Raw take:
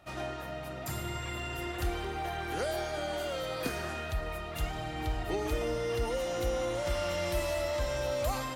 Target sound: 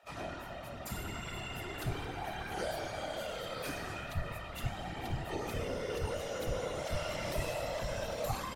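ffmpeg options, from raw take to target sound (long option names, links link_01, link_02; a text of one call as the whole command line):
ffmpeg -i in.wav -filter_complex "[0:a]afftfilt=real='hypot(re,im)*cos(2*PI*random(0))':imag='hypot(re,im)*sin(2*PI*random(1))':win_size=512:overlap=0.75,acrossover=split=400[link_01][link_02];[link_01]adelay=30[link_03];[link_03][link_02]amix=inputs=2:normalize=0,volume=2.5dB" out.wav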